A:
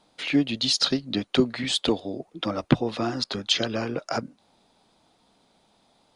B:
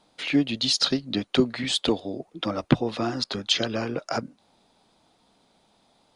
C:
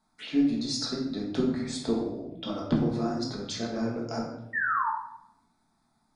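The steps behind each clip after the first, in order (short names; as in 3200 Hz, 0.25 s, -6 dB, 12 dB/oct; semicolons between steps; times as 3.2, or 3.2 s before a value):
nothing audible
envelope phaser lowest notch 500 Hz, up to 3000 Hz, full sweep at -26.5 dBFS; painted sound fall, 4.53–4.9, 850–1900 Hz -22 dBFS; shoebox room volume 240 m³, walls mixed, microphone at 1.5 m; gain -9 dB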